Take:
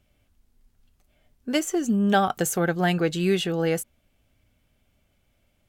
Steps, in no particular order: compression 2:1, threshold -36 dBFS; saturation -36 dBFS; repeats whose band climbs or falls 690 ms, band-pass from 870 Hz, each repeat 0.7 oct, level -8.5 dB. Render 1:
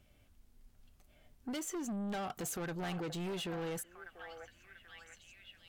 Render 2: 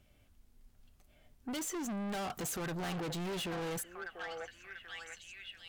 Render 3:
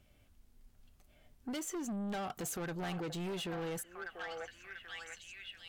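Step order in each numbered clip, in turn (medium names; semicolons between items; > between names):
compression > repeats whose band climbs or falls > saturation; repeats whose band climbs or falls > saturation > compression; repeats whose band climbs or falls > compression > saturation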